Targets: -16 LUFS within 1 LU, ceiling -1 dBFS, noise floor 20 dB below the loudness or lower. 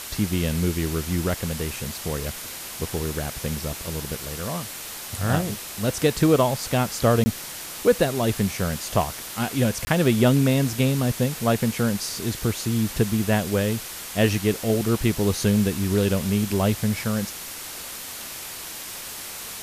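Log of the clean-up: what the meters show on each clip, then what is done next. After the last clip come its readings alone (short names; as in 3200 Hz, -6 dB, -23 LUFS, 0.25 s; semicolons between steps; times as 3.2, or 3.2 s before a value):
dropouts 2; longest dropout 20 ms; noise floor -36 dBFS; noise floor target -45 dBFS; loudness -24.5 LUFS; peak -6.0 dBFS; loudness target -16.0 LUFS
-> interpolate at 7.24/9.85, 20 ms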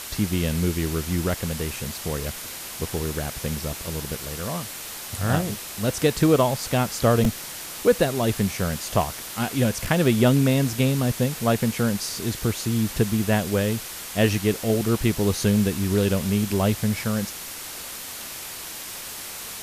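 dropouts 0; noise floor -36 dBFS; noise floor target -45 dBFS
-> denoiser 9 dB, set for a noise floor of -36 dBFS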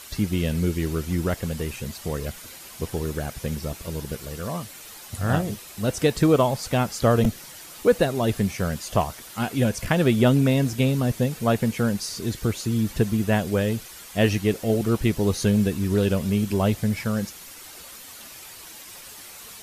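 noise floor -43 dBFS; noise floor target -44 dBFS
-> denoiser 6 dB, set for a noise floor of -43 dBFS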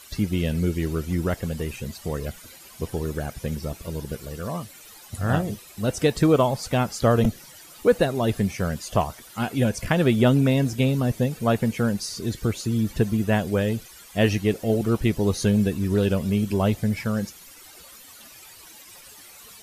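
noise floor -47 dBFS; loudness -24.0 LUFS; peak -6.0 dBFS; loudness target -16.0 LUFS
-> gain +8 dB; limiter -1 dBFS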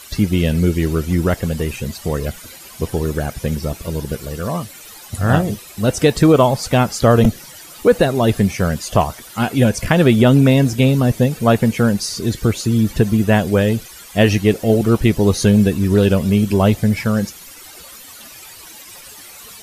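loudness -16.5 LUFS; peak -1.0 dBFS; noise floor -39 dBFS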